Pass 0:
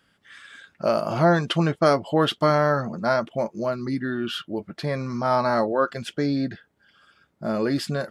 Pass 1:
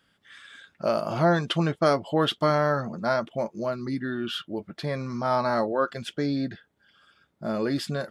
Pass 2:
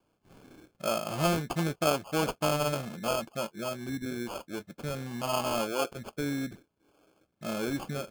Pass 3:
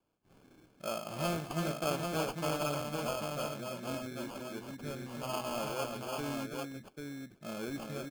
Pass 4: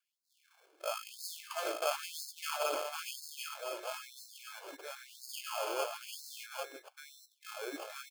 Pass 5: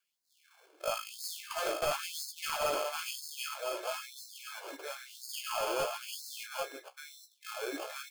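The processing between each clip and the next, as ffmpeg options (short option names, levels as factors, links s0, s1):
-af "equalizer=f=3500:t=o:w=0.24:g=4,volume=0.708"
-af "acrusher=samples=23:mix=1:aa=0.000001,volume=0.531"
-af "aecho=1:1:111|330|793:0.158|0.562|0.631,volume=0.422"
-af "afftfilt=real='re*gte(b*sr/1024,300*pow(3800/300,0.5+0.5*sin(2*PI*1*pts/sr)))':imag='im*gte(b*sr/1024,300*pow(3800/300,0.5+0.5*sin(2*PI*1*pts/sr)))':win_size=1024:overlap=0.75,volume=1.19"
-af "aeval=exprs='0.0794*(cos(1*acos(clip(val(0)/0.0794,-1,1)))-cos(1*PI/2))+0.00562*(cos(2*acos(clip(val(0)/0.0794,-1,1)))-cos(2*PI/2))+0.0178*(cos(5*acos(clip(val(0)/0.0794,-1,1)))-cos(5*PI/2))+0.00562*(cos(7*acos(clip(val(0)/0.0794,-1,1)))-cos(7*PI/2))':c=same,flanger=delay=10:depth=8.7:regen=-43:speed=0.48:shape=triangular,volume=1.5"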